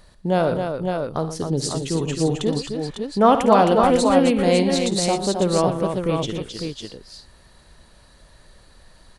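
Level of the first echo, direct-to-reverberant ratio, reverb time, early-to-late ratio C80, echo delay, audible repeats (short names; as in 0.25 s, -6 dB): -14.5 dB, none, none, none, 55 ms, 4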